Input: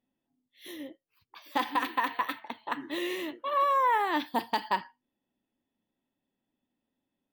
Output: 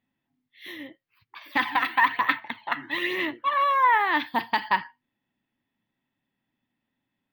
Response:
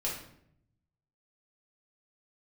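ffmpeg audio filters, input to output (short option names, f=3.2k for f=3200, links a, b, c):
-filter_complex "[0:a]equalizer=f=125:t=o:w=1:g=9,equalizer=f=500:t=o:w=1:g=-4,equalizer=f=1k:t=o:w=1:g=4,equalizer=f=2k:t=o:w=1:g=10,equalizer=f=4k:t=o:w=1:g=4,equalizer=f=8k:t=o:w=1:g=-12,asettb=1/sr,asplit=3[a][b][c];[a]atrim=end=1.414[d];[b]atrim=start=1.41:end=3.85,asetpts=PTS-STARTPTS,afade=t=in:d=0.004:c=qsin,afade=t=out:st=2.436:d=0.004:c=qsin,aphaser=in_gain=1:out_gain=1:delay=1.5:decay=0.47:speed=1.1:type=sinusoidal[e];[c]atrim=start=3.846[f];[d][e]acrossfade=d=0.004:c1=hsin:c2=qsin[g];[g][f]acrossfade=d=0.004:c1=qsin:c2=hsin"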